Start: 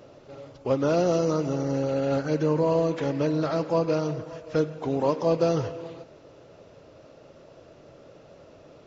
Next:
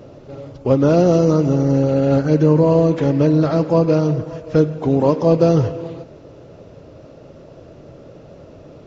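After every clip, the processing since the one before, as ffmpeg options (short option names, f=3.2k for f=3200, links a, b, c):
-af "lowshelf=f=440:g=11,volume=3.5dB"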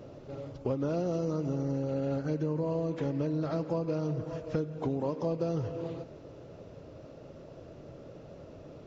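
-af "acompressor=threshold=-21dB:ratio=6,volume=-7.5dB"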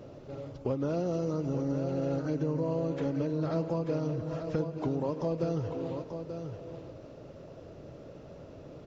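-af "aecho=1:1:886:0.398"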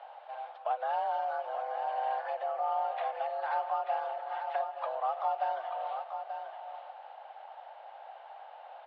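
-af "highpass=f=430:t=q:w=0.5412,highpass=f=430:t=q:w=1.307,lowpass=f=3.4k:t=q:w=0.5176,lowpass=f=3.4k:t=q:w=0.7071,lowpass=f=3.4k:t=q:w=1.932,afreqshift=230,volume=3dB"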